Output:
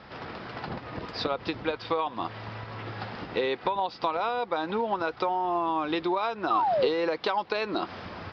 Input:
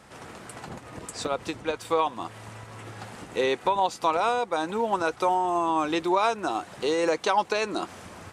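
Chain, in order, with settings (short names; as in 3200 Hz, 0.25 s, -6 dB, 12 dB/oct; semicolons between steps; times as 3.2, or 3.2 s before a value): Chebyshev low-pass 5100 Hz, order 6; compressor, threshold -29 dBFS, peak gain reduction 10.5 dB; painted sound fall, 6.5–6.88, 450–1300 Hz -29 dBFS; gain +4.5 dB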